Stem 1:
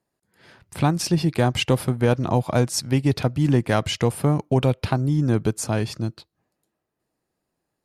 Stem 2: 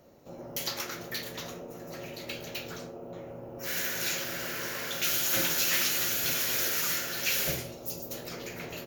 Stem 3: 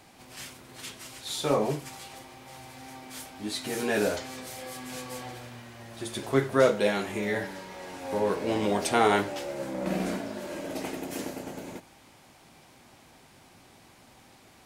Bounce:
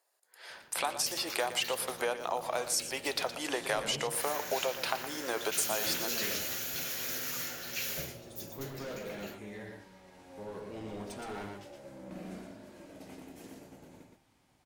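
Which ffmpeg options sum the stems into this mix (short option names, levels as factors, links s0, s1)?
-filter_complex "[0:a]highpass=f=520:w=0.5412,highpass=f=520:w=1.3066,highshelf=f=4500:g=6.5,acompressor=threshold=0.0251:ratio=6,volume=1.33,asplit=2[s0][s1];[s1]volume=0.251[s2];[1:a]adelay=500,volume=0.422[s3];[2:a]volume=13.3,asoftclip=hard,volume=0.075,lowshelf=f=180:g=8.5,adelay=2250,volume=0.141,asplit=2[s4][s5];[s5]volume=0.596[s6];[s2][s6]amix=inputs=2:normalize=0,aecho=0:1:118:1[s7];[s0][s3][s4][s7]amix=inputs=4:normalize=0,bandreject=f=116.1:t=h:w=4,bandreject=f=232.2:t=h:w=4,bandreject=f=348.3:t=h:w=4,bandreject=f=464.4:t=h:w=4,bandreject=f=580.5:t=h:w=4,bandreject=f=696.6:t=h:w=4,bandreject=f=812.7:t=h:w=4,bandreject=f=928.8:t=h:w=4,bandreject=f=1044.9:t=h:w=4,bandreject=f=1161:t=h:w=4,bandreject=f=1277.1:t=h:w=4,bandreject=f=1393.2:t=h:w=4,bandreject=f=1509.3:t=h:w=4,bandreject=f=1625.4:t=h:w=4,bandreject=f=1741.5:t=h:w=4,bandreject=f=1857.6:t=h:w=4,bandreject=f=1973.7:t=h:w=4,bandreject=f=2089.8:t=h:w=4,bandreject=f=2205.9:t=h:w=4,bandreject=f=2322:t=h:w=4,bandreject=f=2438.1:t=h:w=4,bandreject=f=2554.2:t=h:w=4,bandreject=f=2670.3:t=h:w=4,bandreject=f=2786.4:t=h:w=4,bandreject=f=2902.5:t=h:w=4,bandreject=f=3018.6:t=h:w=4,bandreject=f=3134.7:t=h:w=4,bandreject=f=3250.8:t=h:w=4,bandreject=f=3366.9:t=h:w=4,bandreject=f=3483:t=h:w=4"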